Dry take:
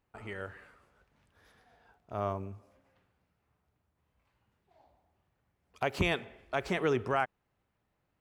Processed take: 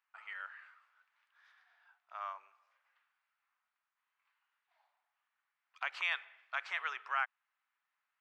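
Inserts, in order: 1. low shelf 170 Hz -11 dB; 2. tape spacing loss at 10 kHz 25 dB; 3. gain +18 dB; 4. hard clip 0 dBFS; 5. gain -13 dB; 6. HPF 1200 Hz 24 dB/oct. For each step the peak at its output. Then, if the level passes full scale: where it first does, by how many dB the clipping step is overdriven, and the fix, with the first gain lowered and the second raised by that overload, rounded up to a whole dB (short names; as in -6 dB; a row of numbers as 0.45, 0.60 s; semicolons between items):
-16.5, -19.5, -1.5, -1.5, -14.5, -21.0 dBFS; no overload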